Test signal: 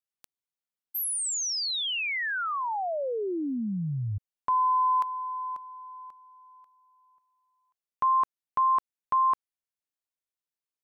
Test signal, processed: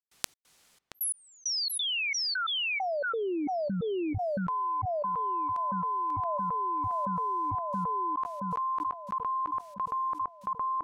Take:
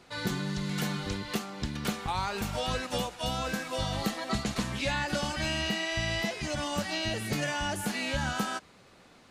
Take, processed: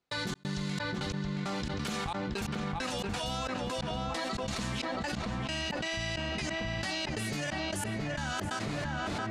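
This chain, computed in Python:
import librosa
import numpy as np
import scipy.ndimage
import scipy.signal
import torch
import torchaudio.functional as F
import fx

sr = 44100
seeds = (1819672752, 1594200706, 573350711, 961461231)

y = fx.high_shelf(x, sr, hz=5600.0, db=9.5)
y = fx.step_gate(y, sr, bpm=134, pattern='.xx.xxx..x..', floor_db=-60.0, edge_ms=4.5)
y = fx.air_absorb(y, sr, metres=57.0)
y = fx.echo_filtered(y, sr, ms=674, feedback_pct=65, hz=2000.0, wet_db=-15.5)
y = fx.env_flatten(y, sr, amount_pct=100)
y = F.gain(torch.from_numpy(y), -8.0).numpy()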